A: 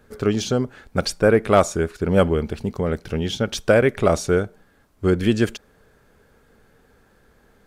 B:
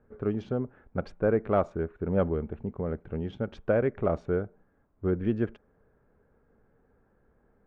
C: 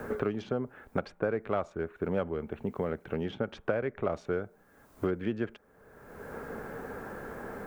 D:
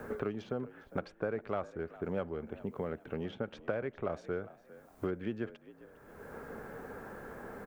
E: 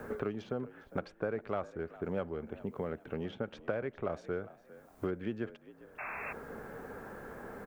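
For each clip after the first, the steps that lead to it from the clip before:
Wiener smoothing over 9 samples; Bessel low-pass 1200 Hz, order 2; gain -8.5 dB
tilt +2.5 dB/oct; three-band squash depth 100%
frequency-shifting echo 0.405 s, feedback 32%, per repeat +57 Hz, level -18 dB; gain -5 dB
painted sound noise, 5.98–6.33, 570–2700 Hz -41 dBFS

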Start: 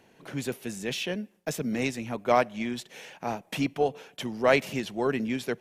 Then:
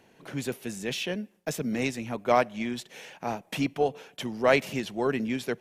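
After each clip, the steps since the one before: nothing audible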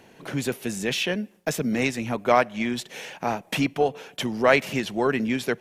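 dynamic EQ 1600 Hz, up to +4 dB, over -38 dBFS, Q 0.88; in parallel at +2.5 dB: compressor, threshold -32 dBFS, peak gain reduction 16.5 dB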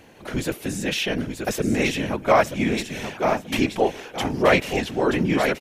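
feedback echo 0.929 s, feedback 22%, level -7 dB; whisperiser; harmonic-percussive split harmonic +4 dB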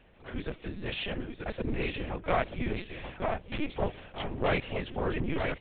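tube stage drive 14 dB, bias 0.6; LPC vocoder at 8 kHz pitch kept; gain -6.5 dB

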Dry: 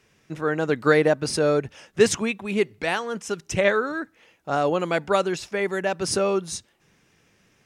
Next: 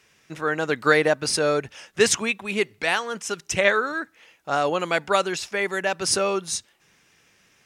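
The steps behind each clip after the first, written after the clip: tilt shelf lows -5 dB, about 690 Hz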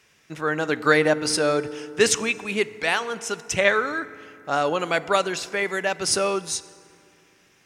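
FDN reverb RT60 2.6 s, low-frequency decay 1.4×, high-frequency decay 0.5×, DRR 15 dB

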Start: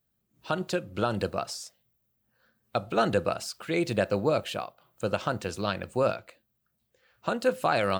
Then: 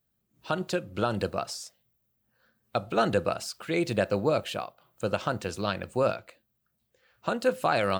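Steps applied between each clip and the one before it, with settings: nothing audible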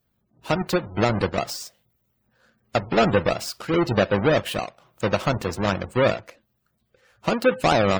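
half-waves squared off; spectral gate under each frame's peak -25 dB strong; gain +2.5 dB

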